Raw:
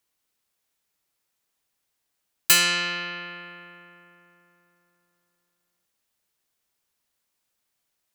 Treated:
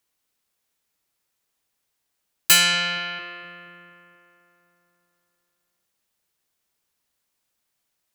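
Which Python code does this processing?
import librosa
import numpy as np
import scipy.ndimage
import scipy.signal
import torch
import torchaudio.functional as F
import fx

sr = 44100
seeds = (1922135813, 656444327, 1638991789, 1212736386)

y = fx.comb(x, sr, ms=1.3, depth=0.7, at=(2.51, 3.19))
y = fx.echo_wet_lowpass(y, sr, ms=236, feedback_pct=54, hz=540.0, wet_db=-10.0)
y = F.gain(torch.from_numpy(y), 1.0).numpy()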